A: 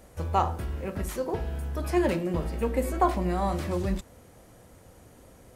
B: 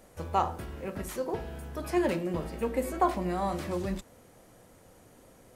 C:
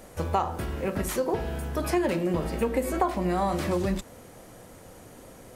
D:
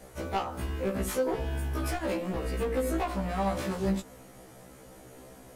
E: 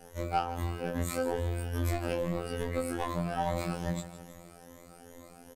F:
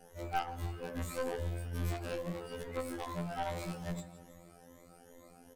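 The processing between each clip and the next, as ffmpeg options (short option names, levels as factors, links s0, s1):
-af "equalizer=f=62:t=o:w=1.6:g=-8.5,volume=0.794"
-af "acompressor=threshold=0.0282:ratio=4,volume=2.66"
-af "asoftclip=type=hard:threshold=0.0668,afftfilt=real='re*1.73*eq(mod(b,3),0)':imag='im*1.73*eq(mod(b,3),0)':win_size=2048:overlap=0.75"
-af "afftfilt=real='re*pow(10,11/40*sin(2*PI*(1.1*log(max(b,1)*sr/1024/100)/log(2)-(2.4)*(pts-256)/sr)))':imag='im*pow(10,11/40*sin(2*PI*(1.1*log(max(b,1)*sr/1024/100)/log(2)-(2.4)*(pts-256)/sr)))':win_size=1024:overlap=0.75,aecho=1:1:159|318|477|636|795|954:0.2|0.112|0.0626|0.035|0.0196|0.011,afftfilt=real='hypot(re,im)*cos(PI*b)':imag='0':win_size=2048:overlap=0.75"
-af "flanger=delay=5.5:depth=4.6:regen=-86:speed=0.39:shape=triangular,aeval=exprs='0.141*(cos(1*acos(clip(val(0)/0.141,-1,1)))-cos(1*PI/2))+0.0141*(cos(4*acos(clip(val(0)/0.141,-1,1)))-cos(4*PI/2))+0.00794*(cos(5*acos(clip(val(0)/0.141,-1,1)))-cos(5*PI/2))+0.0178*(cos(6*acos(clip(val(0)/0.141,-1,1)))-cos(6*PI/2))+0.0251*(cos(8*acos(clip(val(0)/0.141,-1,1)))-cos(8*PI/2))':c=same,volume=0.794"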